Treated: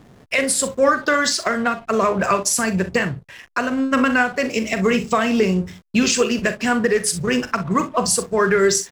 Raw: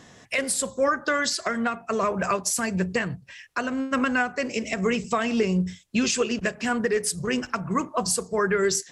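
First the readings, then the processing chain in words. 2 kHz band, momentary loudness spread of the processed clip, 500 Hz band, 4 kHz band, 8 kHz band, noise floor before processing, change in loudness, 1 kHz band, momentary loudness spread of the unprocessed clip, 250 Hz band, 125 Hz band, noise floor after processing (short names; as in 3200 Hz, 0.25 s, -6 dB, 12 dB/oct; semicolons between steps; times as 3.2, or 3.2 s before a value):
+6.5 dB, 6 LU, +6.5 dB, +6.0 dB, +6.0 dB, -51 dBFS, +6.0 dB, +6.5 dB, 5 LU, +6.0 dB, +5.0 dB, -48 dBFS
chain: early reflections 41 ms -11 dB, 63 ms -14 dB; backlash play -41 dBFS; gain +6 dB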